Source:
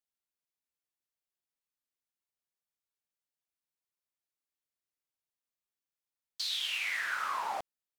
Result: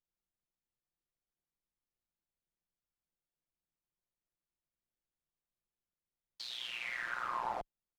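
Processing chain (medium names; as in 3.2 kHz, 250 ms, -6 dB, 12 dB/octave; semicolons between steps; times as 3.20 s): comb 5.7 ms, depth 52%; AM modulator 120 Hz, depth 65%; tilt EQ -3.5 dB/octave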